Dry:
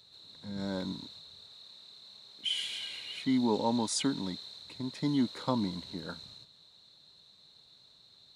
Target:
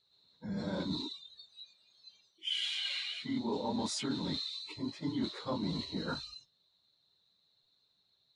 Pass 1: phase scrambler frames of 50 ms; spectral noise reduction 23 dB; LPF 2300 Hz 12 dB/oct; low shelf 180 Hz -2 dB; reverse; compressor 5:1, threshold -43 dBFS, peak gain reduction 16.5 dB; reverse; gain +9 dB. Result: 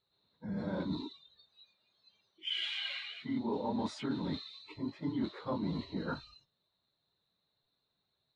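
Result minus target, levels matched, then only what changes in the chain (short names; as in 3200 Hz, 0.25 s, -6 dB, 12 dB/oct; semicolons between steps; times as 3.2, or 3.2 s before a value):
8000 Hz band -13.0 dB
change: LPF 6400 Hz 12 dB/oct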